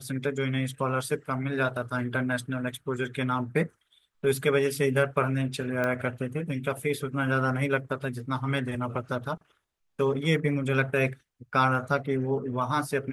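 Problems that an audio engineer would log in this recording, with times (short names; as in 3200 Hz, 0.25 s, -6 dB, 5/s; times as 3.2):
5.84 pop -16 dBFS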